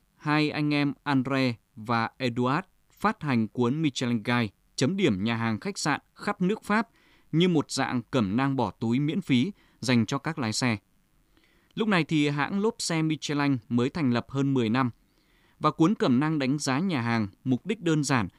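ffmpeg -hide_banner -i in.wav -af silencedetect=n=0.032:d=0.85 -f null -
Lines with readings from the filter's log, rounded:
silence_start: 10.76
silence_end: 11.77 | silence_duration: 1.01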